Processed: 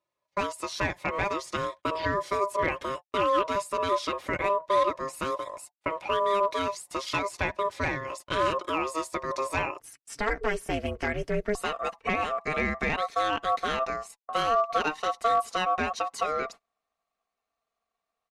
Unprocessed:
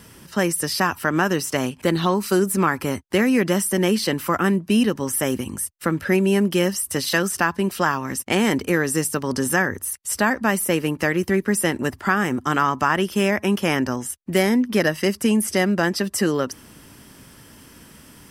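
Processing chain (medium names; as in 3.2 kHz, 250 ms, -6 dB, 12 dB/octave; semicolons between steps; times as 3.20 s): high-pass 73 Hz 24 dB/octave; gate -32 dBFS, range -30 dB; treble shelf 11 kHz -6.5 dB; comb 4.4 ms, depth 52%; ring modulator 800 Hz, from 9.80 s 210 Hz, from 11.55 s 920 Hz; one-sided clip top -11 dBFS, bottom -6.5 dBFS; distance through air 68 m; trim -5.5 dB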